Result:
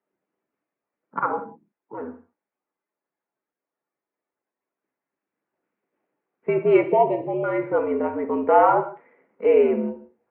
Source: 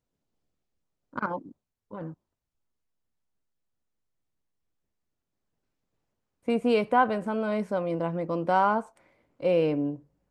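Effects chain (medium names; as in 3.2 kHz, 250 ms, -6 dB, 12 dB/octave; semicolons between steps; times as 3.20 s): coarse spectral quantiser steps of 15 dB; 6.82–7.44 s: Butterworth band-stop 1.5 kHz, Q 0.88; mistuned SSB -72 Hz 330–2400 Hz; gated-style reverb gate 210 ms falling, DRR 6.5 dB; trim +7 dB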